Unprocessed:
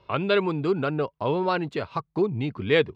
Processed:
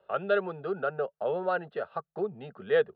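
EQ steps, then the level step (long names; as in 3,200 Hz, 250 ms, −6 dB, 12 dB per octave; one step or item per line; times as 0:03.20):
three-way crossover with the lows and the highs turned down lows −21 dB, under 180 Hz, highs −22 dB, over 2,200 Hz
parametric band 110 Hz −10.5 dB 0.65 octaves
phaser with its sweep stopped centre 1,500 Hz, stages 8
0.0 dB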